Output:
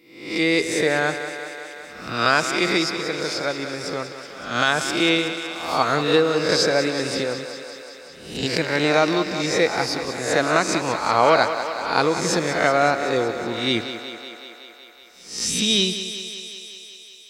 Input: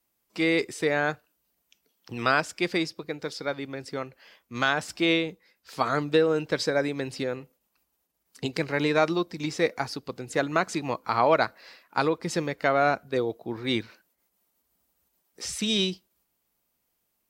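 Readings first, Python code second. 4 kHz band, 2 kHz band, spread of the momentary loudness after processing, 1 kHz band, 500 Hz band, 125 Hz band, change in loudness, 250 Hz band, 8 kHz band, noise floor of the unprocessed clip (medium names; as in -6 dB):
+9.5 dB, +6.5 dB, 16 LU, +6.0 dB, +5.5 dB, +4.0 dB, +6.0 dB, +4.5 dB, +11.5 dB, -77 dBFS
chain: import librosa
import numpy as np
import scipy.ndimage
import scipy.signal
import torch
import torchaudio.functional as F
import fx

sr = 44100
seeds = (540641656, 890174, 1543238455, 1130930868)

p1 = fx.spec_swells(x, sr, rise_s=0.65)
p2 = fx.dynamic_eq(p1, sr, hz=5900.0, q=0.94, threshold_db=-46.0, ratio=4.0, max_db=5)
p3 = p2 + fx.echo_thinned(p2, sr, ms=187, feedback_pct=75, hz=220.0, wet_db=-10, dry=0)
y = p3 * librosa.db_to_amplitude(3.0)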